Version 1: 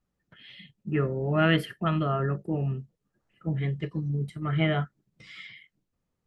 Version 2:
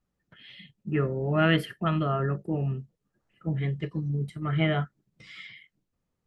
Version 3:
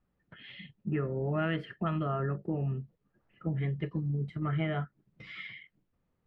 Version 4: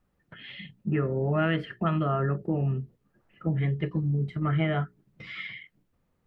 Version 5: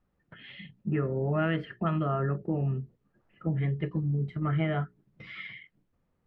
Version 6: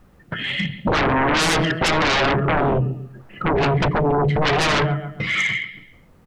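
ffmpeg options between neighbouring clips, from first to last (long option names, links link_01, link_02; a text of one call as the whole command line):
ffmpeg -i in.wav -af anull out.wav
ffmpeg -i in.wav -af "lowpass=2700,acompressor=threshold=-34dB:ratio=3,volume=3dB" out.wav
ffmpeg -i in.wav -af "bandreject=frequency=60:width_type=h:width=6,bandreject=frequency=120:width_type=h:width=6,bandreject=frequency=180:width_type=h:width=6,bandreject=frequency=240:width_type=h:width=6,bandreject=frequency=300:width_type=h:width=6,bandreject=frequency=360:width_type=h:width=6,bandreject=frequency=420:width_type=h:width=6,volume=5.5dB" out.wav
ffmpeg -i in.wav -af "lowpass=frequency=3100:poles=1,volume=-2dB" out.wav
ffmpeg -i in.wav -af "aecho=1:1:139|278|417:0.178|0.0569|0.0182,aeval=exprs='0.178*sin(PI/2*8.91*val(0)/0.178)':channel_layout=same" out.wav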